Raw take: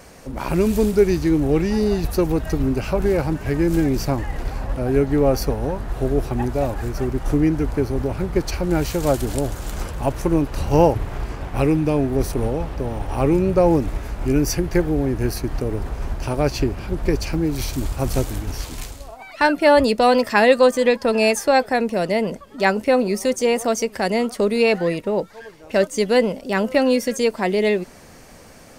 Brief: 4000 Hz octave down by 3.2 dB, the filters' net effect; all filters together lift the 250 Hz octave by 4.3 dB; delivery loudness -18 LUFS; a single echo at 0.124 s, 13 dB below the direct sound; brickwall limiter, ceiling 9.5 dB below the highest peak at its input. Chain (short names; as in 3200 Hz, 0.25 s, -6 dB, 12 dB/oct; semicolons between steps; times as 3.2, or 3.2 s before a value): bell 250 Hz +5.5 dB; bell 4000 Hz -4 dB; limiter -10 dBFS; echo 0.124 s -13 dB; gain +2.5 dB